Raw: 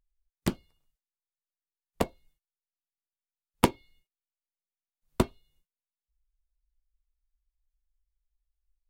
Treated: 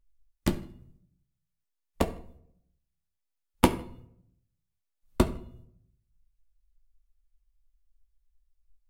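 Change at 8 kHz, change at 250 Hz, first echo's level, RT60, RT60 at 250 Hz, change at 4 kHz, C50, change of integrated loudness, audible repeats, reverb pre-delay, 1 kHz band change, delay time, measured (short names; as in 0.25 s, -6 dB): +0.5 dB, +2.5 dB, none, 0.65 s, 0.80 s, +0.5 dB, 14.5 dB, +1.5 dB, none, 3 ms, +1.0 dB, none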